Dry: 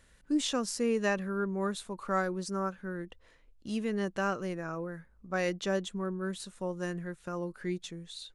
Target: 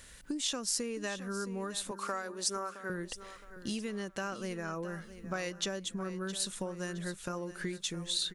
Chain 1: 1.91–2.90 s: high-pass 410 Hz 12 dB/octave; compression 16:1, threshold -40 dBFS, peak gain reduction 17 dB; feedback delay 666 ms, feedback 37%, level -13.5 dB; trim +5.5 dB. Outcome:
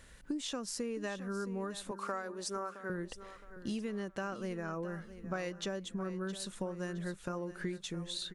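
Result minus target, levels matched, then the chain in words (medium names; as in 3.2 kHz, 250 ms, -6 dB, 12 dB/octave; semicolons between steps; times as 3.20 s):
4 kHz band -4.0 dB
1.91–2.90 s: high-pass 410 Hz 12 dB/octave; compression 16:1, threshold -40 dBFS, peak gain reduction 17 dB; treble shelf 2.5 kHz +10 dB; feedback delay 666 ms, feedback 37%, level -13.5 dB; trim +5.5 dB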